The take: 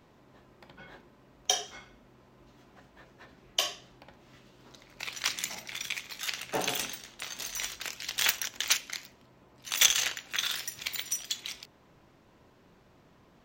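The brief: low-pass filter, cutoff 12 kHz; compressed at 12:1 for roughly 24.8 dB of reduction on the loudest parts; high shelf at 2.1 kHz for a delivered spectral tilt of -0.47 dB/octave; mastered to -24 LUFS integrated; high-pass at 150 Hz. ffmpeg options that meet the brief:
-af "highpass=150,lowpass=12000,highshelf=f=2100:g=8.5,acompressor=threshold=0.0178:ratio=12,volume=5.62"

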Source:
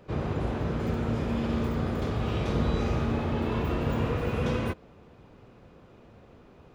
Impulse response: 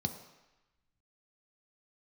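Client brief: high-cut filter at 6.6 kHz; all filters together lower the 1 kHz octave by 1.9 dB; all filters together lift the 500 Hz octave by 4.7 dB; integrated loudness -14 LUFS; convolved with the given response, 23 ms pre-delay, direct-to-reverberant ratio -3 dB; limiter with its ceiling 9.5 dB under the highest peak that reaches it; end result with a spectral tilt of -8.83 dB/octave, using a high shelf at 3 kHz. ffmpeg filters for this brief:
-filter_complex "[0:a]lowpass=6600,equalizer=f=500:t=o:g=6.5,equalizer=f=1000:t=o:g=-5.5,highshelf=f=3000:g=5,alimiter=limit=0.075:level=0:latency=1,asplit=2[s0][s1];[1:a]atrim=start_sample=2205,adelay=23[s2];[s1][s2]afir=irnorm=-1:irlink=0,volume=1.06[s3];[s0][s3]amix=inputs=2:normalize=0,volume=2.37"

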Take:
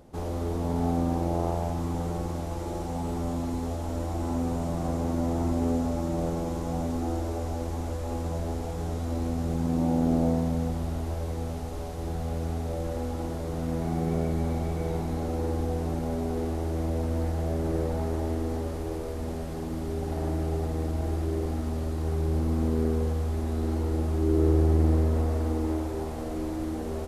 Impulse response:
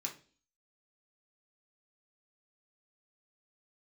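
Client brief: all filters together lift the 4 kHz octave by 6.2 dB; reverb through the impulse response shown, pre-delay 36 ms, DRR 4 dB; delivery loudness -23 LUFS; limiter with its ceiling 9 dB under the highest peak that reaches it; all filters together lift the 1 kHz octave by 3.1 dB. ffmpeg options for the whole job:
-filter_complex "[0:a]equalizer=f=1000:t=o:g=4,equalizer=f=4000:t=o:g=7.5,alimiter=limit=0.106:level=0:latency=1,asplit=2[s0][s1];[1:a]atrim=start_sample=2205,adelay=36[s2];[s1][s2]afir=irnorm=-1:irlink=0,volume=0.668[s3];[s0][s3]amix=inputs=2:normalize=0,volume=2.24"

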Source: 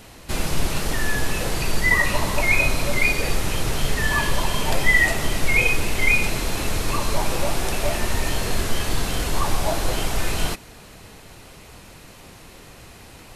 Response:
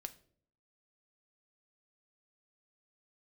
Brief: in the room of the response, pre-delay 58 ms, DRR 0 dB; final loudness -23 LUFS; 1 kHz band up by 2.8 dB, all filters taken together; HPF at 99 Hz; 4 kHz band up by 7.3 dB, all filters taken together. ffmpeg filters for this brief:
-filter_complex "[0:a]highpass=99,equalizer=f=1000:t=o:g=3,equalizer=f=4000:t=o:g=9,asplit=2[s0][s1];[1:a]atrim=start_sample=2205,adelay=58[s2];[s1][s2]afir=irnorm=-1:irlink=0,volume=1.58[s3];[s0][s3]amix=inputs=2:normalize=0,volume=0.473"

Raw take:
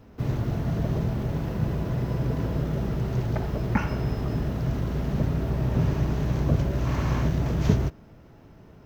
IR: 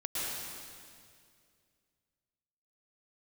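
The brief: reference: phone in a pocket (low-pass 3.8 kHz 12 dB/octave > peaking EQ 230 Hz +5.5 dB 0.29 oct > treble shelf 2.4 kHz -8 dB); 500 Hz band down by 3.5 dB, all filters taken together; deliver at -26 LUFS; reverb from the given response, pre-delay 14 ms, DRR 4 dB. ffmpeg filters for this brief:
-filter_complex "[0:a]equalizer=f=500:t=o:g=-4.5,asplit=2[s0][s1];[1:a]atrim=start_sample=2205,adelay=14[s2];[s1][s2]afir=irnorm=-1:irlink=0,volume=0.335[s3];[s0][s3]amix=inputs=2:normalize=0,lowpass=3800,equalizer=f=230:t=o:w=0.29:g=5.5,highshelf=f=2400:g=-8,volume=0.944"

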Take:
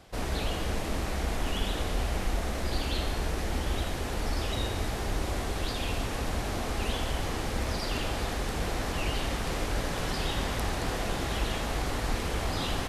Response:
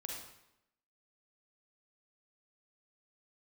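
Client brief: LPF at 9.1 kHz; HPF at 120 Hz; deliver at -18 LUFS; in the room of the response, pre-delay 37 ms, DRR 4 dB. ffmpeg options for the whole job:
-filter_complex "[0:a]highpass=120,lowpass=9100,asplit=2[s0][s1];[1:a]atrim=start_sample=2205,adelay=37[s2];[s1][s2]afir=irnorm=-1:irlink=0,volume=0.75[s3];[s0][s3]amix=inputs=2:normalize=0,volume=5.01"

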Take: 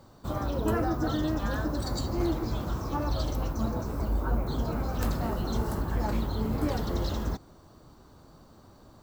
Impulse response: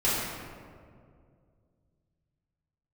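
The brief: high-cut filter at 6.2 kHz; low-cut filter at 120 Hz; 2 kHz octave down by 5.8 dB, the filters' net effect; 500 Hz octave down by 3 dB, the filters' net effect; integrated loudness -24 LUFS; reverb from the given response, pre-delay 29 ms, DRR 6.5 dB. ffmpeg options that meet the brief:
-filter_complex "[0:a]highpass=120,lowpass=6200,equalizer=f=500:t=o:g=-3.5,equalizer=f=2000:t=o:g=-8,asplit=2[s0][s1];[1:a]atrim=start_sample=2205,adelay=29[s2];[s1][s2]afir=irnorm=-1:irlink=0,volume=0.106[s3];[s0][s3]amix=inputs=2:normalize=0,volume=2.82"

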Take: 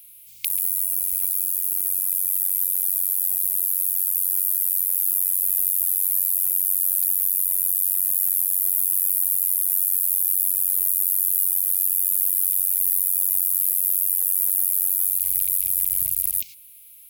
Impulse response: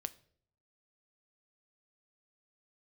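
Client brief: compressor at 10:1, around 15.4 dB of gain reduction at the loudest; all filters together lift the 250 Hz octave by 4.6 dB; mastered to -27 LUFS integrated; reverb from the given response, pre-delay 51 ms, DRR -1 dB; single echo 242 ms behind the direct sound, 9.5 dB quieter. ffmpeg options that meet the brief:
-filter_complex "[0:a]equalizer=f=250:t=o:g=7.5,acompressor=threshold=0.0251:ratio=10,aecho=1:1:242:0.335,asplit=2[s0][s1];[1:a]atrim=start_sample=2205,adelay=51[s2];[s1][s2]afir=irnorm=-1:irlink=0,volume=1.41[s3];[s0][s3]amix=inputs=2:normalize=0,volume=1.41"

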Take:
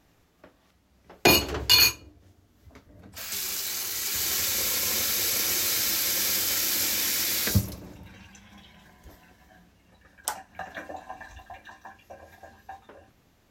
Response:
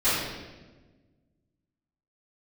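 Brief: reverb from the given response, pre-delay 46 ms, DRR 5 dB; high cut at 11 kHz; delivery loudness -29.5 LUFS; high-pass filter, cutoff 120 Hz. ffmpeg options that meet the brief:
-filter_complex "[0:a]highpass=120,lowpass=11000,asplit=2[s0][s1];[1:a]atrim=start_sample=2205,adelay=46[s2];[s1][s2]afir=irnorm=-1:irlink=0,volume=0.0944[s3];[s0][s3]amix=inputs=2:normalize=0,volume=0.531"

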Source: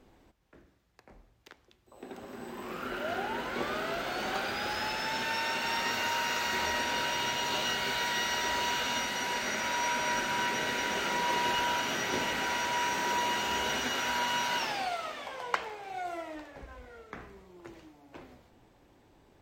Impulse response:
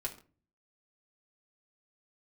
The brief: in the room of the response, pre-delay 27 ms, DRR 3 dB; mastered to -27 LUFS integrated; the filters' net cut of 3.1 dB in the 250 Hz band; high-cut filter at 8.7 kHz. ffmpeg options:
-filter_complex "[0:a]lowpass=8700,equalizer=f=250:t=o:g=-4,asplit=2[s0][s1];[1:a]atrim=start_sample=2205,adelay=27[s2];[s1][s2]afir=irnorm=-1:irlink=0,volume=0.668[s3];[s0][s3]amix=inputs=2:normalize=0,volume=1.33"

